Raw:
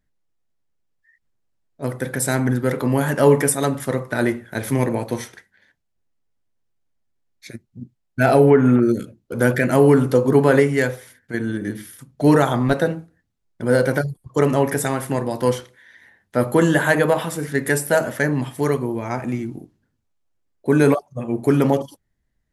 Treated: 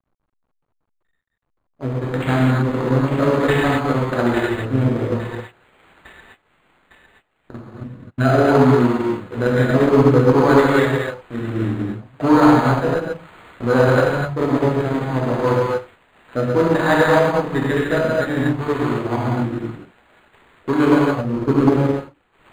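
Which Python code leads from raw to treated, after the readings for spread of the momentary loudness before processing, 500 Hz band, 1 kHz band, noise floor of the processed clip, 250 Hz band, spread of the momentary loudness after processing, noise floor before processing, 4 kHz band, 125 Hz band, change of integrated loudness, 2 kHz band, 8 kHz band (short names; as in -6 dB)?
14 LU, +1.0 dB, +4.5 dB, -70 dBFS, +2.5 dB, 14 LU, -73 dBFS, +3.0 dB, +2.5 dB, +1.5 dB, +1.0 dB, under -10 dB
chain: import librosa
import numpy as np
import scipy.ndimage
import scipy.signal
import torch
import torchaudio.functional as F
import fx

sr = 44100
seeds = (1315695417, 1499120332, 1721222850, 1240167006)

p1 = fx.wiener(x, sr, points=41)
p2 = fx.fuzz(p1, sr, gain_db=33.0, gate_db=-34.0)
p3 = p1 + (p2 * 10.0 ** (-10.0 / 20.0))
p4 = fx.rotary_switch(p3, sr, hz=6.0, then_hz=0.6, switch_at_s=2.17)
p5 = p4 + fx.echo_wet_highpass(p4, sr, ms=856, feedback_pct=42, hz=4800.0, wet_db=-5.0, dry=0)
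p6 = fx.rev_gated(p5, sr, seeds[0], gate_ms=290, shape='flat', drr_db=-6.5)
p7 = fx.transient(p6, sr, attack_db=2, sustain_db=-4)
p8 = fx.high_shelf(p7, sr, hz=3000.0, db=6.0)
p9 = fx.quant_companded(p8, sr, bits=6)
p10 = fx.peak_eq(p9, sr, hz=1100.0, db=10.0, octaves=1.3)
p11 = np.interp(np.arange(len(p10)), np.arange(len(p10))[::8], p10[::8])
y = p11 * 10.0 ** (-7.0 / 20.0)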